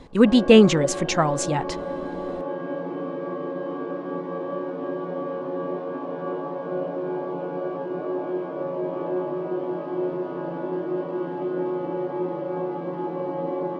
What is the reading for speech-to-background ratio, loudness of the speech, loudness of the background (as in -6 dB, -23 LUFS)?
11.0 dB, -18.5 LUFS, -29.5 LUFS